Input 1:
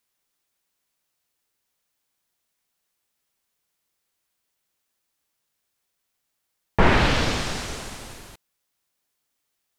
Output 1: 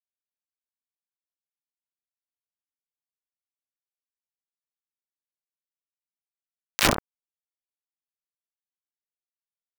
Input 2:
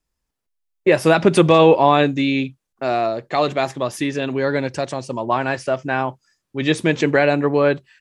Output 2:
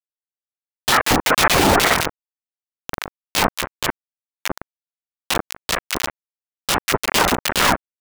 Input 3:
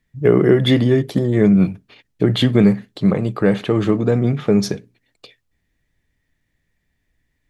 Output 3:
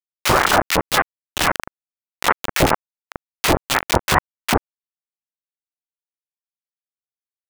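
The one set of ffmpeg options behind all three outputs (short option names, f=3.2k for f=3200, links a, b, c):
-filter_complex "[0:a]anlmdn=39.8,acrossover=split=460 2300:gain=0.224 1 0.1[a][b][c];[a][b][c]amix=inputs=3:normalize=0,acrossover=split=460|3000[d][e][f];[e]acompressor=threshold=-21dB:ratio=6[g];[d][g][f]amix=inputs=3:normalize=0,aeval=exprs='0.668*(cos(1*acos(clip(val(0)/0.668,-1,1)))-cos(1*PI/2))+0.119*(cos(3*acos(clip(val(0)/0.668,-1,1)))-cos(3*PI/2))+0.0944*(cos(4*acos(clip(val(0)/0.668,-1,1)))-cos(4*PI/2))+0.0422*(cos(7*acos(clip(val(0)/0.668,-1,1)))-cos(7*PI/2))':c=same,aresample=16000,asoftclip=type=tanh:threshold=-12dB,aresample=44100,flanger=delay=19:depth=7.5:speed=0.62,afftfilt=real='hypot(re,im)*cos(2*PI*random(0))':imag='hypot(re,im)*sin(2*PI*random(1))':win_size=512:overlap=0.75,acrusher=bits=5:mix=0:aa=0.000001,acrossover=split=1200[h][i];[h]adelay=40[j];[j][i]amix=inputs=2:normalize=0,alimiter=level_in=28.5dB:limit=-1dB:release=50:level=0:latency=1,aeval=exprs='val(0)*sin(2*PI*790*n/s+790*0.7/2.1*sin(2*PI*2.1*n/s))':c=same"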